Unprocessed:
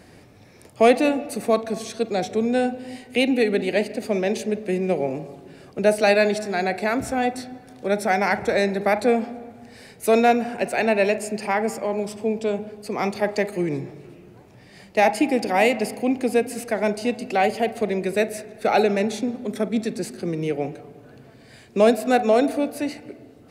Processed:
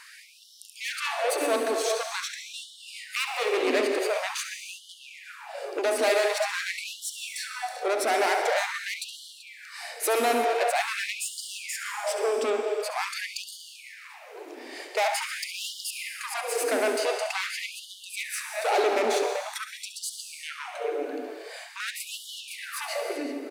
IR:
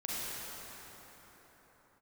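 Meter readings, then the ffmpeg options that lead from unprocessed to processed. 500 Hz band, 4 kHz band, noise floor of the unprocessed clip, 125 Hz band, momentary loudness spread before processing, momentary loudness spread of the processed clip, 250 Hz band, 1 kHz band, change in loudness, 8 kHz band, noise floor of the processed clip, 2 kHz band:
-7.0 dB, +2.0 dB, -49 dBFS, under -30 dB, 11 LU, 17 LU, -15.5 dB, -5.5 dB, -6.0 dB, +4.0 dB, -48 dBFS, -3.0 dB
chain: -filter_complex "[0:a]asplit=2[a][b];[b]adelay=384.8,volume=-13dB,highshelf=f=4k:g=-8.66[c];[a][c]amix=inputs=2:normalize=0,acompressor=threshold=-28dB:ratio=1.5,asoftclip=type=tanh:threshold=-29dB,asplit=2[d][e];[1:a]atrim=start_sample=2205,afade=t=out:st=0.35:d=0.01,atrim=end_sample=15876,adelay=69[f];[e][f]afir=irnorm=-1:irlink=0,volume=-7dB[g];[d][g]amix=inputs=2:normalize=0,afftfilt=real='re*gte(b*sr/1024,240*pow(2900/240,0.5+0.5*sin(2*PI*0.46*pts/sr)))':imag='im*gte(b*sr/1024,240*pow(2900/240,0.5+0.5*sin(2*PI*0.46*pts/sr)))':win_size=1024:overlap=0.75,volume=7.5dB"

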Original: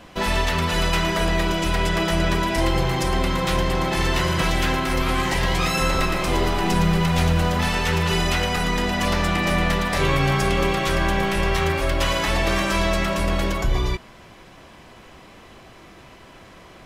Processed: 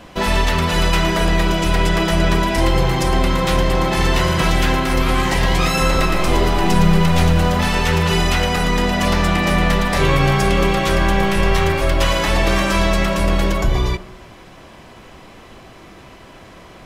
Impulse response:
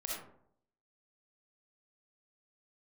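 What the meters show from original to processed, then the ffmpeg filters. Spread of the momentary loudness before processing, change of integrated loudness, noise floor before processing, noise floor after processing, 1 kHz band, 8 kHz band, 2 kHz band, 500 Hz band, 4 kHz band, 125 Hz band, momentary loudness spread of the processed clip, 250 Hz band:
2 LU, +4.5 dB, -46 dBFS, -42 dBFS, +4.0 dB, +3.5 dB, +3.5 dB, +4.5 dB, +3.5 dB, +5.0 dB, 2 LU, +5.0 dB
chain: -filter_complex "[0:a]asplit=2[a][b];[b]lowpass=1.3k[c];[1:a]atrim=start_sample=2205[d];[c][d]afir=irnorm=-1:irlink=0,volume=-11.5dB[e];[a][e]amix=inputs=2:normalize=0,volume=3.5dB"

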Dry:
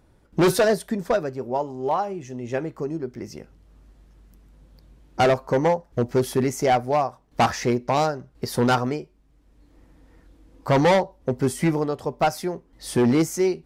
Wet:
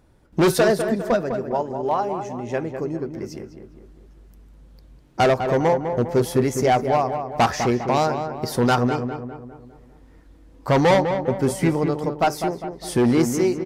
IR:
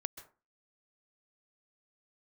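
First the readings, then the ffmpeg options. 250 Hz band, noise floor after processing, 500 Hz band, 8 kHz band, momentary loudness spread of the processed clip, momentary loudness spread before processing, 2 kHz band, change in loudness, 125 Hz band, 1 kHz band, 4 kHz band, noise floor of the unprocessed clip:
+2.0 dB, -50 dBFS, +2.0 dB, +1.0 dB, 13 LU, 12 LU, +1.5 dB, +2.0 dB, +2.0 dB, +2.0 dB, +1.0 dB, -59 dBFS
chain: -filter_complex "[0:a]asplit=2[a][b];[b]adelay=202,lowpass=f=1.9k:p=1,volume=-7dB,asplit=2[c][d];[d]adelay=202,lowpass=f=1.9k:p=1,volume=0.5,asplit=2[e][f];[f]adelay=202,lowpass=f=1.9k:p=1,volume=0.5,asplit=2[g][h];[h]adelay=202,lowpass=f=1.9k:p=1,volume=0.5,asplit=2[i][j];[j]adelay=202,lowpass=f=1.9k:p=1,volume=0.5,asplit=2[k][l];[l]adelay=202,lowpass=f=1.9k:p=1,volume=0.5[m];[a][c][e][g][i][k][m]amix=inputs=7:normalize=0,volume=1dB"

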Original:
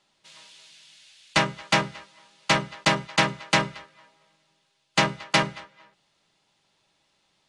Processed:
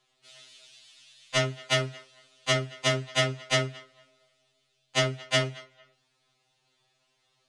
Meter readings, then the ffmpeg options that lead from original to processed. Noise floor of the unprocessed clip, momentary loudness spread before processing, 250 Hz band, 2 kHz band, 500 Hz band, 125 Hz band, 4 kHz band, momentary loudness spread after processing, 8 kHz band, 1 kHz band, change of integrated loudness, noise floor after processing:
-71 dBFS, 11 LU, -6.5 dB, -5.0 dB, +0.5 dB, +1.0 dB, -2.0 dB, 10 LU, -1.0 dB, -9.5 dB, -3.5 dB, -73 dBFS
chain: -af "afftfilt=real='re*2.45*eq(mod(b,6),0)':imag='im*2.45*eq(mod(b,6),0)':win_size=2048:overlap=0.75"

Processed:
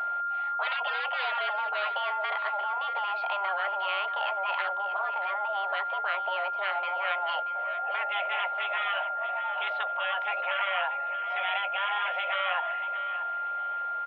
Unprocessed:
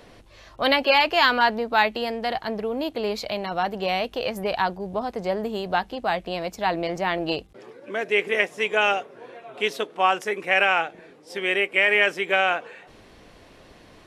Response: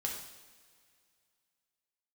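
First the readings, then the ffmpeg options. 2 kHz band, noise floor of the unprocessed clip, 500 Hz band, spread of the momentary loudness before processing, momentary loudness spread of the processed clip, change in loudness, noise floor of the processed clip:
-7.5 dB, -51 dBFS, -12.0 dB, 11 LU, 2 LU, -6.0 dB, -33 dBFS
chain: -filter_complex "[0:a]afftfilt=real='re*lt(hypot(re,im),0.2)':imag='im*lt(hypot(re,im),0.2)':win_size=1024:overlap=0.75,tiltshelf=f=1.1k:g=6,asplit=2[a][b];[b]volume=33dB,asoftclip=hard,volume=-33dB,volume=-9.5dB[c];[a][c]amix=inputs=2:normalize=0,aeval=exprs='val(0)+0.0398*sin(2*PI*1200*n/s)':c=same,asplit=2[d][e];[e]aecho=0:1:632|1264|1896:0.251|0.0603|0.0145[f];[d][f]amix=inputs=2:normalize=0,highpass=f=430:t=q:w=0.5412,highpass=f=430:t=q:w=1.307,lowpass=f=3.1k:t=q:w=0.5176,lowpass=f=3.1k:t=q:w=0.7071,lowpass=f=3.1k:t=q:w=1.932,afreqshift=200"

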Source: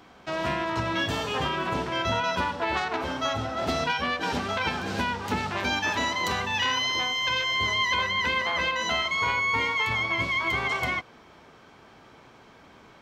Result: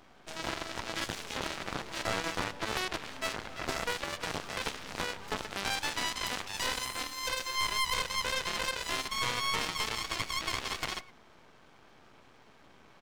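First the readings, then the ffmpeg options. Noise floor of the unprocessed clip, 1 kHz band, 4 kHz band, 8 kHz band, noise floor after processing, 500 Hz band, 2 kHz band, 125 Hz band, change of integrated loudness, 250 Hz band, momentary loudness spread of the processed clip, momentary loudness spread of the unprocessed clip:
-53 dBFS, -9.0 dB, -5.5 dB, +1.5 dB, -58 dBFS, -8.5 dB, -9.5 dB, -10.5 dB, -7.5 dB, -10.0 dB, 7 LU, 5 LU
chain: -af "aecho=1:1:108:0.0891,aeval=exprs='max(val(0),0)':c=same,aeval=exprs='0.211*(cos(1*acos(clip(val(0)/0.211,-1,1)))-cos(1*PI/2))+0.0335*(cos(3*acos(clip(val(0)/0.211,-1,1)))-cos(3*PI/2))+0.0335*(cos(6*acos(clip(val(0)/0.211,-1,1)))-cos(6*PI/2))+0.0596*(cos(7*acos(clip(val(0)/0.211,-1,1)))-cos(7*PI/2))':c=same,volume=-5.5dB"

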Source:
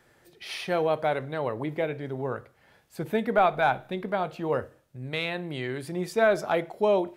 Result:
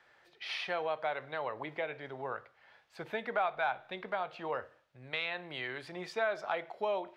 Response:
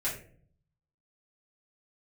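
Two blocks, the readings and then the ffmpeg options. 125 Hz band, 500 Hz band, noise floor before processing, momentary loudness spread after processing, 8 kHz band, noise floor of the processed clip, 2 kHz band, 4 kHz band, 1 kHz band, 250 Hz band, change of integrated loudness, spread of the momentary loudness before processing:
-17.5 dB, -10.5 dB, -63 dBFS, 9 LU, n/a, -67 dBFS, -5.0 dB, -4.0 dB, -8.0 dB, -16.0 dB, -9.0 dB, 14 LU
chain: -filter_complex "[0:a]acrossover=split=600 5000:gain=0.158 1 0.0794[a][b][c];[a][b][c]amix=inputs=3:normalize=0,acompressor=threshold=-34dB:ratio=2"

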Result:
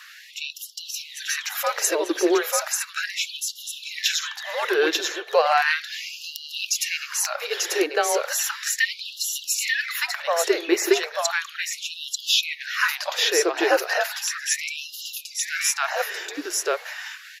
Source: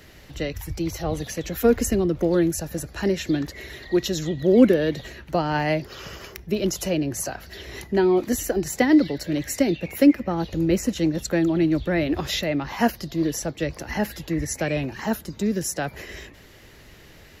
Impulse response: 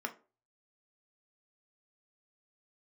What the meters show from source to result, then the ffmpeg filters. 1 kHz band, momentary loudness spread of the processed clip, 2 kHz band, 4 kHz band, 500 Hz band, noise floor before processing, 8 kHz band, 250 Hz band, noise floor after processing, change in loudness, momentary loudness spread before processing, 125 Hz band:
+4.0 dB, 11 LU, +8.0 dB, +9.5 dB, -1.5 dB, -48 dBFS, +8.0 dB, -11.5 dB, -44 dBFS, -0.5 dB, 13 LU, under -40 dB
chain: -filter_complex "[0:a]acrossover=split=7700[a][b];[a]acontrast=35[c];[c][b]amix=inputs=2:normalize=0,afreqshift=-160,aecho=1:1:890:0.708,afftfilt=real='re*gte(b*sr/1024,300*pow(2800/300,0.5+0.5*sin(2*PI*0.35*pts/sr)))':imag='im*gte(b*sr/1024,300*pow(2800/300,0.5+0.5*sin(2*PI*0.35*pts/sr)))':win_size=1024:overlap=0.75,volume=3dB"

